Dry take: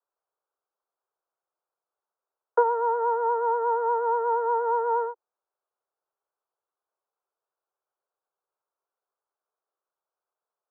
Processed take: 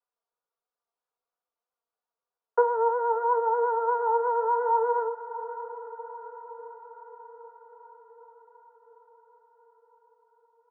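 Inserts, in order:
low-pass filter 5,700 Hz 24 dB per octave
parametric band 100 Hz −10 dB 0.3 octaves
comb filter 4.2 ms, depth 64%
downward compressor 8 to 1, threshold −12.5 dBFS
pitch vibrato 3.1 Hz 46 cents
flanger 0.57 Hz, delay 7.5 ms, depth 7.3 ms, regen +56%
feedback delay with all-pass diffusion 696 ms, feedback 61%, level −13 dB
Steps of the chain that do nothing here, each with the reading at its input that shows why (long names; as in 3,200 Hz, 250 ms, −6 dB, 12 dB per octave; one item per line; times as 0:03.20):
low-pass filter 5,700 Hz: nothing at its input above 1,400 Hz
parametric band 100 Hz: nothing at its input below 430 Hz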